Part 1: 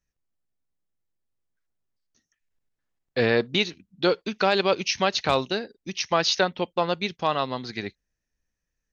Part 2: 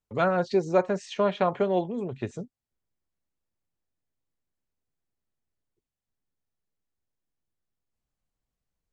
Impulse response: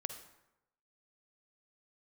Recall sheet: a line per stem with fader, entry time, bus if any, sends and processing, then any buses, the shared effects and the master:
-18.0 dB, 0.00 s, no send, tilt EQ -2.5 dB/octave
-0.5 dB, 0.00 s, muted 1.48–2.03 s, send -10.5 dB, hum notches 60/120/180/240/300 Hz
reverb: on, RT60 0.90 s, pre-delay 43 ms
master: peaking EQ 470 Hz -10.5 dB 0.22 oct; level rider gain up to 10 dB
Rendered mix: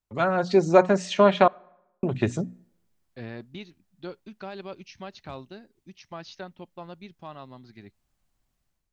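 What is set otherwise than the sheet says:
stem 1 -18.0 dB -> -27.5 dB; stem 2: send -10.5 dB -> -19.5 dB

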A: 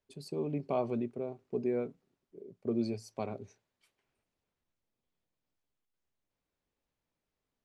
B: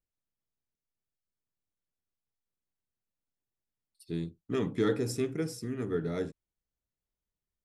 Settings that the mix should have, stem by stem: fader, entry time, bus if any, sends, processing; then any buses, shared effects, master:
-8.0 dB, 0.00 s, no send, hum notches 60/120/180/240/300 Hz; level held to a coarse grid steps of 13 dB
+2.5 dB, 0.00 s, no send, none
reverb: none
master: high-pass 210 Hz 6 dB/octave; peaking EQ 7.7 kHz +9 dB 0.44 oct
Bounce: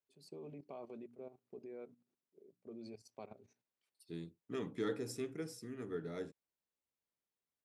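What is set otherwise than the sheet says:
stem B +2.5 dB -> -8.5 dB; master: missing peaking EQ 7.7 kHz +9 dB 0.44 oct

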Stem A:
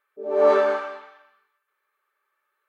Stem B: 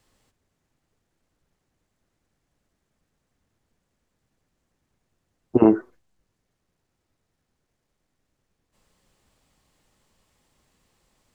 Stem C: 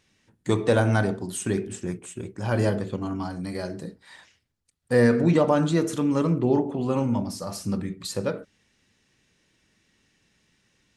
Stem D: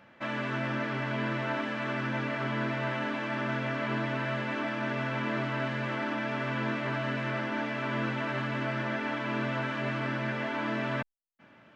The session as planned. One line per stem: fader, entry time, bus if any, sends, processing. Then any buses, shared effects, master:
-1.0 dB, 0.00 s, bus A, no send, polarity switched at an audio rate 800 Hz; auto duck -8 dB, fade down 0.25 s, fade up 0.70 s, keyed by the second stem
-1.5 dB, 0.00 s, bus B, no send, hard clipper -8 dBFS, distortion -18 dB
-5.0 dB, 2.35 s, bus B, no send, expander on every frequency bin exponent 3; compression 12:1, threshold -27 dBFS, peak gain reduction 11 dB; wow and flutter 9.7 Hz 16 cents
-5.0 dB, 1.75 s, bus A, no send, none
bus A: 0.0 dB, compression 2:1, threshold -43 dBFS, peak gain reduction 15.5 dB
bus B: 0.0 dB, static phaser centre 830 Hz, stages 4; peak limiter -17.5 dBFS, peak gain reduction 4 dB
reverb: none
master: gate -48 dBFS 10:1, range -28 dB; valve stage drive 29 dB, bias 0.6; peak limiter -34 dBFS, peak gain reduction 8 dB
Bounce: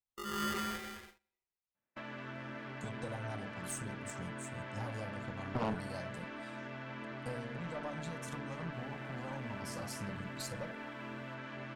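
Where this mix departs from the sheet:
stem C: missing expander on every frequency bin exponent 3; master: missing peak limiter -34 dBFS, peak gain reduction 8 dB

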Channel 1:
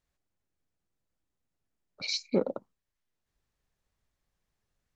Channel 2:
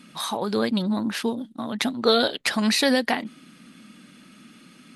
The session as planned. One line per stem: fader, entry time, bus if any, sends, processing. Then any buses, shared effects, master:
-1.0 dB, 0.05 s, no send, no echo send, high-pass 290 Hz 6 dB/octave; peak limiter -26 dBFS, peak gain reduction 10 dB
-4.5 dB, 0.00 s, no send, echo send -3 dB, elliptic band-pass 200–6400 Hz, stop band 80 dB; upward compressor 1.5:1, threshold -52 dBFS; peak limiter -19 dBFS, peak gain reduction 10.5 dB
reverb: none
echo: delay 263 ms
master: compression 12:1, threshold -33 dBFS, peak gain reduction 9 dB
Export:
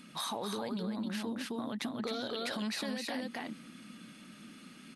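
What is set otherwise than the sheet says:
stem 1 -1.0 dB -> -9.5 dB; stem 2: missing elliptic band-pass 200–6400 Hz, stop band 80 dB

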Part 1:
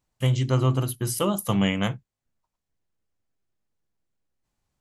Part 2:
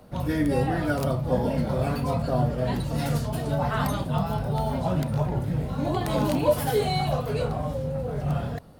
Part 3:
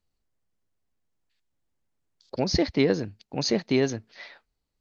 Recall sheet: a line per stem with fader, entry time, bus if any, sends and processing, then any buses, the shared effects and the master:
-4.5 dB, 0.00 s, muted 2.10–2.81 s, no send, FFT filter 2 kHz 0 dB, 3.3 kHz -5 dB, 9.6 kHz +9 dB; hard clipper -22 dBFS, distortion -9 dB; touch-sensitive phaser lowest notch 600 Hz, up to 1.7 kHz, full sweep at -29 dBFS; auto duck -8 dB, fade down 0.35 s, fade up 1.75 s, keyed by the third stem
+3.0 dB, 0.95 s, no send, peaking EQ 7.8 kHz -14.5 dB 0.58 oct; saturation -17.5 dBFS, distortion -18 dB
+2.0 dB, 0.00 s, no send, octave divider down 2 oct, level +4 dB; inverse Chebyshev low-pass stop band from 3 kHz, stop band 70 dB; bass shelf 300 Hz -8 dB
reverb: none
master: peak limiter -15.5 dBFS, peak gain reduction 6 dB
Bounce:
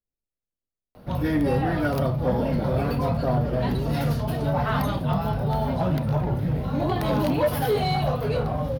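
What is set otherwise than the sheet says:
stem 1: muted; stem 3 +2.0 dB -> -8.0 dB

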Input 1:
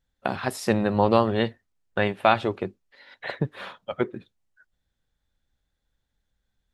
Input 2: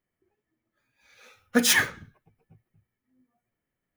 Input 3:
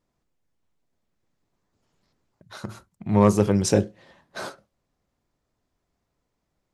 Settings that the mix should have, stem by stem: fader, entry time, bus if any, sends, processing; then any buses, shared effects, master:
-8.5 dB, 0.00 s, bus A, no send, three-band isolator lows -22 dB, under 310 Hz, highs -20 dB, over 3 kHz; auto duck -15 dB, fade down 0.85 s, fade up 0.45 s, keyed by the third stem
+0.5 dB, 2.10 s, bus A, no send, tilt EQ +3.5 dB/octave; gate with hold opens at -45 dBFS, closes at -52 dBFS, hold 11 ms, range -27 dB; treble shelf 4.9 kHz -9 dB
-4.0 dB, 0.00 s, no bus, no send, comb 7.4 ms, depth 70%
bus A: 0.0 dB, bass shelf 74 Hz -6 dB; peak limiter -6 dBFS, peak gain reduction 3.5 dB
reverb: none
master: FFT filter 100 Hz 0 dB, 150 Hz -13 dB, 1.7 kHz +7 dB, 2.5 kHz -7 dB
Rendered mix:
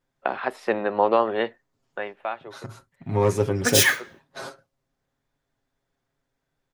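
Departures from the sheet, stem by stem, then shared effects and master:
stem 1 -8.5 dB -> +2.5 dB; master: missing FFT filter 100 Hz 0 dB, 150 Hz -13 dB, 1.7 kHz +7 dB, 2.5 kHz -7 dB

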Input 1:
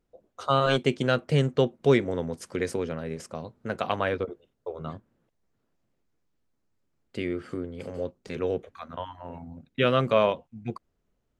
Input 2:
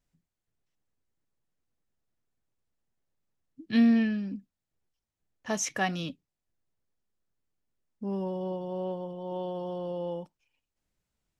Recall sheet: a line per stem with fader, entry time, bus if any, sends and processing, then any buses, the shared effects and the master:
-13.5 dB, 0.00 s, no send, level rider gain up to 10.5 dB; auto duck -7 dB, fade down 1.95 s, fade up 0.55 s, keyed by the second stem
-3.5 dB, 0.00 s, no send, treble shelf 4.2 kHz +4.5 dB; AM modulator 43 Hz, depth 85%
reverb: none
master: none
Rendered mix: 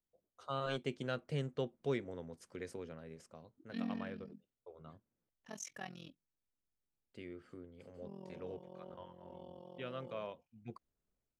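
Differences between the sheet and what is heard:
stem 1 -13.5 dB -> -22.0 dB; stem 2 -3.5 dB -> -15.0 dB

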